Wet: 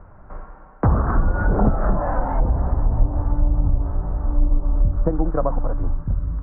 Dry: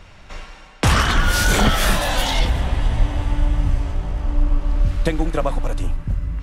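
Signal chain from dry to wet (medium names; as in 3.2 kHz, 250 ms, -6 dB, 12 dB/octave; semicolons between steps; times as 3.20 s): steep low-pass 1.4 kHz 36 dB/octave; low-pass that closes with the level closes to 760 Hz, closed at -12.5 dBFS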